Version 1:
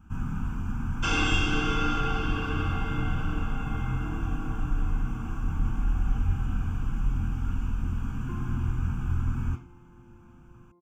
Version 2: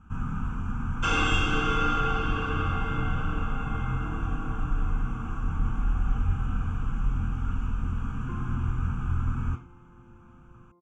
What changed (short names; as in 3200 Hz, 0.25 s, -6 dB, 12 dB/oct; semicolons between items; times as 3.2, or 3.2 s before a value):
speech: add LPF 7600 Hz 12 dB/oct; master: add thirty-one-band EQ 315 Hz -3 dB, 500 Hz +5 dB, 1250 Hz +7 dB, 5000 Hz -8 dB